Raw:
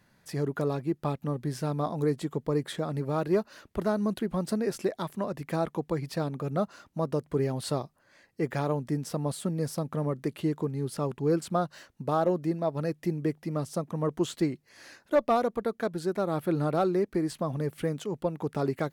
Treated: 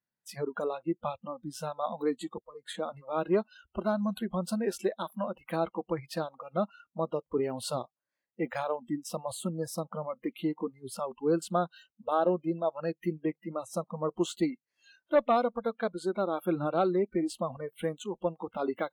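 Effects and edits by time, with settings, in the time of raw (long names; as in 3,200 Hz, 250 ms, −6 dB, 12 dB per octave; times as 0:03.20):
0:02.38–0:02.79: fade in
whole clip: noise reduction from a noise print of the clip's start 29 dB; low-shelf EQ 110 Hz −8.5 dB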